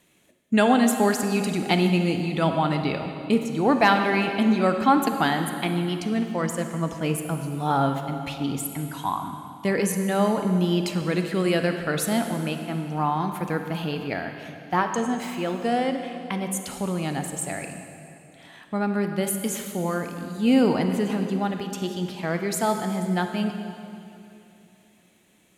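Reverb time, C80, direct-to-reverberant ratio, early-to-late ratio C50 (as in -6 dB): 2.8 s, 7.0 dB, 5.5 dB, 6.5 dB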